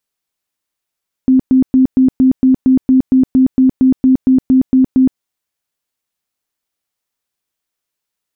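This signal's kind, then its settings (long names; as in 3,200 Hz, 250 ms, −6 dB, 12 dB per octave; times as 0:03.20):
tone bursts 260 Hz, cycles 30, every 0.23 s, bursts 17, −5.5 dBFS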